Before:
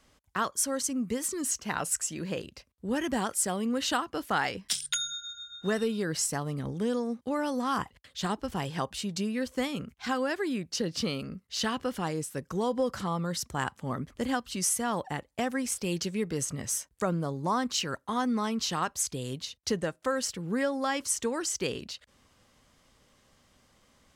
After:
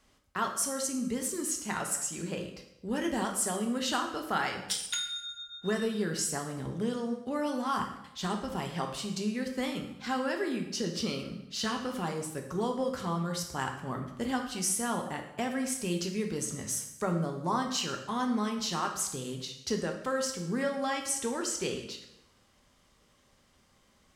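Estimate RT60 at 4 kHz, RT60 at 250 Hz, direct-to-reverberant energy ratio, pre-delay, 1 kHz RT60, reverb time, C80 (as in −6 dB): 0.75 s, 0.85 s, 2.5 dB, 3 ms, 0.80 s, 0.85 s, 9.5 dB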